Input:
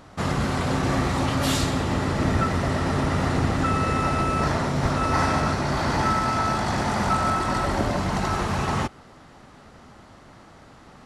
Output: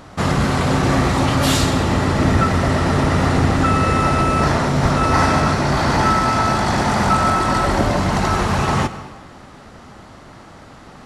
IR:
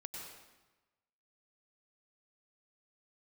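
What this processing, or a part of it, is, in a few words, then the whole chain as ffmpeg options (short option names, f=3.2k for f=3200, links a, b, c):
saturated reverb return: -filter_complex "[0:a]asplit=2[a][b];[1:a]atrim=start_sample=2205[c];[b][c]afir=irnorm=-1:irlink=0,asoftclip=type=tanh:threshold=-23dB,volume=-5dB[d];[a][d]amix=inputs=2:normalize=0,volume=5dB"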